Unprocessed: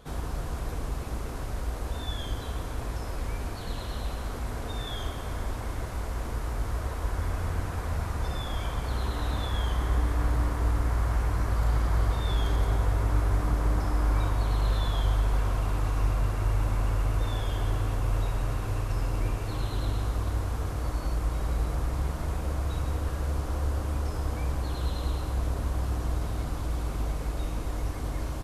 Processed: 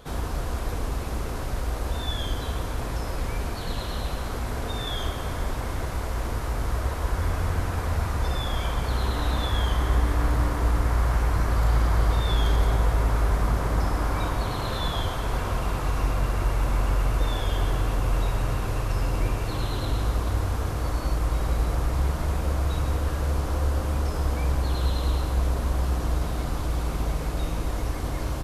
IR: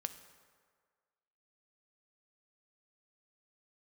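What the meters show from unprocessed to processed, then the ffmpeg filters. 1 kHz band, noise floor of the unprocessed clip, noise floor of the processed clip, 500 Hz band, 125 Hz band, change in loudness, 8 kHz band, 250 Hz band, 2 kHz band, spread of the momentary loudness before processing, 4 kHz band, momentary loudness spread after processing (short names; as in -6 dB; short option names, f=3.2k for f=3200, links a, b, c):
+5.0 dB, -35 dBFS, -31 dBFS, +5.0 dB, +3.0 dB, +3.5 dB, +5.0 dB, +4.0 dB, +5.5 dB, 8 LU, +6.0 dB, 7 LU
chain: -filter_complex "[0:a]highshelf=f=5.9k:g=7.5,bandreject=f=50:t=h:w=6,bandreject=f=100:t=h:w=6,bandreject=f=150:t=h:w=6,bandreject=f=200:t=h:w=6,bandreject=f=250:t=h:w=6,bandreject=f=300:t=h:w=6,asplit=2[a][b];[1:a]atrim=start_sample=2205,lowpass=6.2k[c];[b][c]afir=irnorm=-1:irlink=0,volume=-0.5dB[d];[a][d]amix=inputs=2:normalize=0"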